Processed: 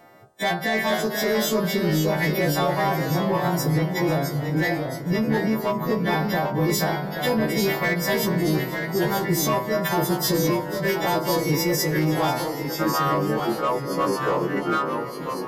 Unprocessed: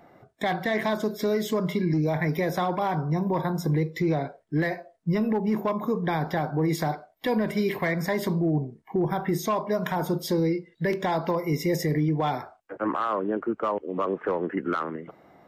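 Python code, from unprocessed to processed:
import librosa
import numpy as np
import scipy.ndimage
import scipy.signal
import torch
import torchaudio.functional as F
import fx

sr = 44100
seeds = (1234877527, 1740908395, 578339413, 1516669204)

p1 = fx.freq_snap(x, sr, grid_st=2)
p2 = 10.0 ** (-21.5 / 20.0) * (np.abs((p1 / 10.0 ** (-21.5 / 20.0) + 3.0) % 4.0 - 2.0) - 1.0)
p3 = p1 + (p2 * librosa.db_to_amplitude(-8.0))
p4 = fx.echo_pitch(p3, sr, ms=447, semitones=-1, count=3, db_per_echo=-6.0)
y = fx.echo_alternate(p4, sr, ms=247, hz=1500.0, feedback_pct=80, wet_db=-13.5)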